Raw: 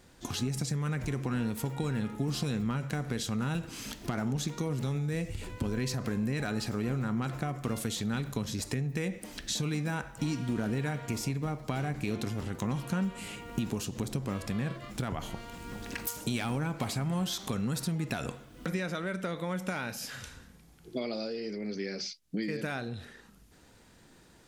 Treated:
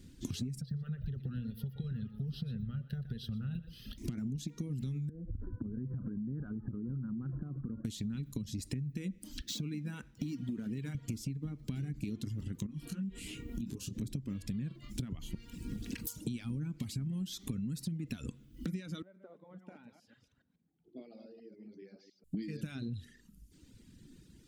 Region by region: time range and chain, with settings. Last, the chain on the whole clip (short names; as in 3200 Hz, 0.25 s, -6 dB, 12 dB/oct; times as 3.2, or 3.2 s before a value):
0.61–3.98 bell 8900 Hz -13 dB 1.4 oct + fixed phaser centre 1500 Hz, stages 8 + echo 0.121 s -8.5 dB
5.09–7.85 steep low-pass 1600 Hz 96 dB/oct + compressor 12:1, threshold -35 dBFS
9.42–10.95 median filter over 5 samples + HPF 220 Hz 6 dB/oct
12.66–14.02 bell 120 Hz -3.5 dB 0.99 oct + compressor, threshold -38 dBFS + doubler 26 ms -3 dB
19.02–22.24 reverse delay 0.14 s, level -4 dB + band-pass 730 Hz, Q 3.5
whole clip: reverb removal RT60 1.3 s; EQ curve 280 Hz 0 dB, 730 Hz -26 dB, 3000 Hz -9 dB; compressor, threshold -42 dBFS; gain +7 dB